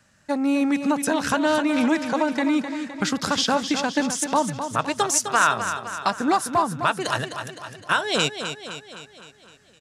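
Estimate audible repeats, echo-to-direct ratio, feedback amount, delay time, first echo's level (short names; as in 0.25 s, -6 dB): 6, -7.5 dB, 55%, 0.257 s, -9.0 dB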